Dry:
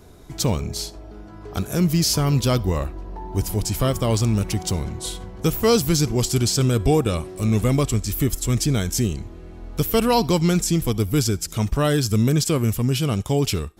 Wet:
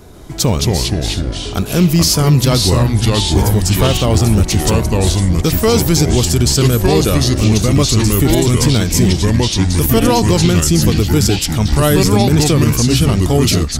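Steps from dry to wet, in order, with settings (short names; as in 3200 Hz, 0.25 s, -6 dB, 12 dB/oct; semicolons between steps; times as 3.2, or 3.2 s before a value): echoes that change speed 0.141 s, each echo -3 st, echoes 3; maximiser +9 dB; gain -1 dB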